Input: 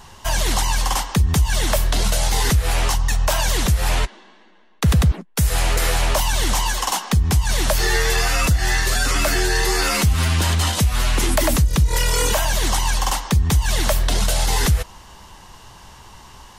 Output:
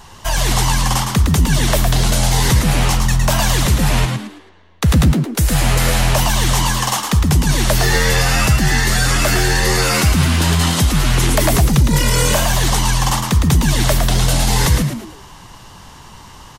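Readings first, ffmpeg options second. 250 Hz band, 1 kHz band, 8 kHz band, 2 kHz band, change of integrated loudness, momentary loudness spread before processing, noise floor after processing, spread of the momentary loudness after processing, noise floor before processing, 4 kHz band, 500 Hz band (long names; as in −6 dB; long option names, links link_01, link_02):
+8.0 dB, +4.0 dB, +4.0 dB, +4.0 dB, +4.5 dB, 3 LU, −40 dBFS, 3 LU, −45 dBFS, +4.0 dB, +4.0 dB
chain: -filter_complex "[0:a]asplit=5[link_01][link_02][link_03][link_04][link_05];[link_02]adelay=110,afreqshift=85,volume=-5dB[link_06];[link_03]adelay=220,afreqshift=170,volume=-14.6dB[link_07];[link_04]adelay=330,afreqshift=255,volume=-24.3dB[link_08];[link_05]adelay=440,afreqshift=340,volume=-33.9dB[link_09];[link_01][link_06][link_07][link_08][link_09]amix=inputs=5:normalize=0,volume=2.5dB"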